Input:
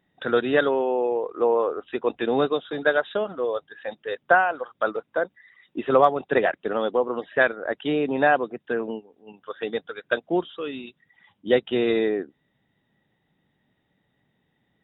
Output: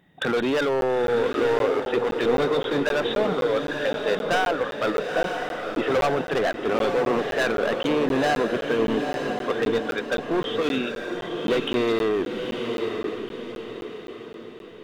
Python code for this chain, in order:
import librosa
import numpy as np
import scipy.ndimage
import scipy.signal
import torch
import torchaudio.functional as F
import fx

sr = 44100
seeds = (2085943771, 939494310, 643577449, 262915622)

p1 = fx.diode_clip(x, sr, knee_db=-6.5)
p2 = fx.peak_eq(p1, sr, hz=160.0, db=6.0, octaves=0.24)
p3 = fx.over_compress(p2, sr, threshold_db=-30.0, ratio=-1.0)
p4 = p2 + (p3 * 10.0 ** (0.0 / 20.0))
p5 = np.clip(p4, -10.0 ** (-19.5 / 20.0), 10.0 ** (-19.5 / 20.0))
p6 = p5 + fx.echo_diffused(p5, sr, ms=923, feedback_pct=45, wet_db=-4.5, dry=0)
y = fx.buffer_crackle(p6, sr, first_s=0.81, period_s=0.26, block=512, kind='zero')